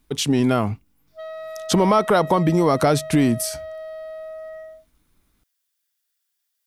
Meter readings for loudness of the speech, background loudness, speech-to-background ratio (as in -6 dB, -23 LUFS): -19.5 LUFS, -34.5 LUFS, 15.0 dB